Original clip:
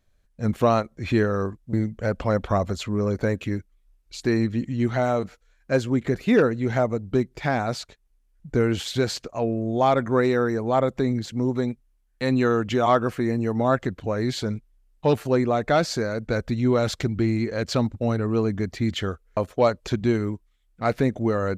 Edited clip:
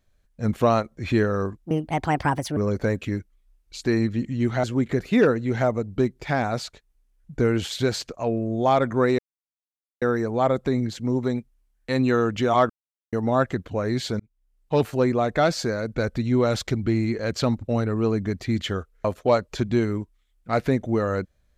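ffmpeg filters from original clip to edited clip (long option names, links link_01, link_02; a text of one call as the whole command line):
ffmpeg -i in.wav -filter_complex "[0:a]asplit=8[link_01][link_02][link_03][link_04][link_05][link_06][link_07][link_08];[link_01]atrim=end=1.654[link_09];[link_02]atrim=start=1.65:end=2.96,asetpts=PTS-STARTPTS,asetrate=63063,aresample=44100,atrim=end_sample=40399,asetpts=PTS-STARTPTS[link_10];[link_03]atrim=start=2.956:end=5.032[link_11];[link_04]atrim=start=5.788:end=10.34,asetpts=PTS-STARTPTS,afade=type=out:start_time=4.548:duration=0.004:curve=hsin,apad=pad_dur=0.83[link_12];[link_05]atrim=start=10.34:end=13.02,asetpts=PTS-STARTPTS,afade=type=in:duration=0.004:curve=hsin,afade=type=out:start_time=2.676:duration=0.004:curve=hsin[link_13];[link_06]atrim=start=13.02:end=13.45,asetpts=PTS-STARTPTS,volume=0[link_14];[link_07]atrim=start=13.45:end=14.52,asetpts=PTS-STARTPTS,afade=type=in:duration=0.004:curve=hsin,afade=type=out:start_time=1.066:duration=0.004:curve=hsin[link_15];[link_08]atrim=start=14.52,asetpts=PTS-STARTPTS,afade=type=in:duration=0.62[link_16];[link_09][link_10]acrossfade=duration=0.004:curve1=hsin:curve2=hsin[link_17];[link_17][link_11]acrossfade=duration=0.004:curve1=hsin:curve2=hsin[link_18];[link_12][link_13][link_14][link_15][link_16]concat=n=5:v=0:a=1[link_19];[link_18][link_19]acrossfade=duration=0.004:curve1=hsin:curve2=hsin" out.wav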